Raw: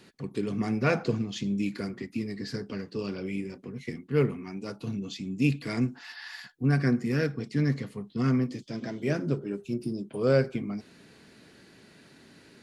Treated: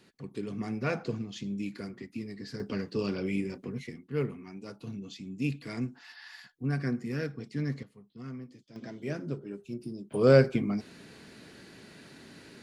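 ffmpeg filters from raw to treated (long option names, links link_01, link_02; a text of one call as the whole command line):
ffmpeg -i in.wav -af "asetnsamples=nb_out_samples=441:pad=0,asendcmd='2.6 volume volume 2dB;3.87 volume volume -6.5dB;7.83 volume volume -16.5dB;8.76 volume volume -7dB;10.12 volume volume 3.5dB',volume=-6dB" out.wav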